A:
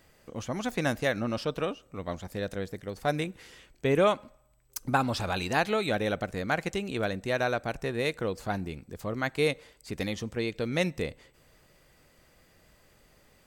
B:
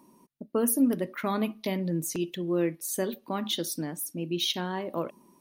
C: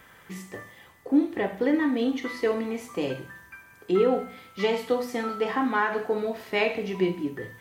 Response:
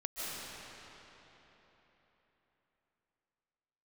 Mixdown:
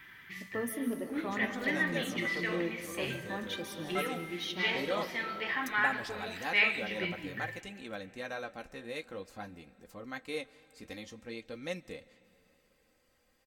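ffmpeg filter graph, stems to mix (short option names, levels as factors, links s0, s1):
-filter_complex "[0:a]aecho=1:1:3.8:0.53,adelay=900,volume=0.422,asplit=2[s0][s1];[s1]volume=0.0668[s2];[1:a]highshelf=f=4700:g=-8.5,volume=0.531,asplit=2[s3][s4];[s4]volume=0.501[s5];[2:a]equalizer=f=125:t=o:w=1:g=6,equalizer=f=250:t=o:w=1:g=-9,equalizer=f=500:t=o:w=1:g=-11,equalizer=f=1000:t=o:w=1:g=-6,equalizer=f=2000:t=o:w=1:g=9,equalizer=f=4000:t=o:w=1:g=4,equalizer=f=8000:t=o:w=1:g=-12,volume=1,asplit=2[s6][s7];[s7]volume=0.106[s8];[3:a]atrim=start_sample=2205[s9];[s2][s5][s8]amix=inputs=3:normalize=0[s10];[s10][s9]afir=irnorm=-1:irlink=0[s11];[s0][s3][s6][s11]amix=inputs=4:normalize=0,lowshelf=f=470:g=-4,flanger=delay=4.9:depth=9.7:regen=-52:speed=0.51:shape=triangular"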